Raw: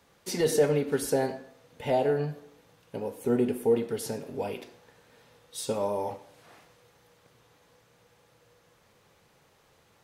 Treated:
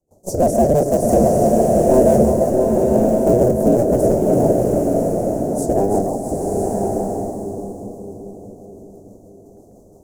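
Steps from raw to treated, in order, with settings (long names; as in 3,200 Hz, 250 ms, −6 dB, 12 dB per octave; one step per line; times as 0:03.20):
sub-harmonics by changed cycles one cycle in 2, inverted
Chebyshev band-stop filter 680–6,800 Hz, order 3
on a send: echo with a time of its own for lows and highs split 600 Hz, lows 625 ms, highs 332 ms, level −7.5 dB
on the sum: dynamic equaliser 600 Hz, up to +5 dB, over −44 dBFS, Q 3.3
in parallel at −12 dB: gain into a clipping stage and back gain 30 dB
on the sum: rotating-speaker cabinet horn 6 Hz
noise gate with hold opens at −54 dBFS
high-shelf EQ 3,800 Hz −7.5 dB
echo ahead of the sound 32 ms −21 dB
boost into a limiter +18.5 dB
slow-attack reverb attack 1,040 ms, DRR 0.5 dB
level −5 dB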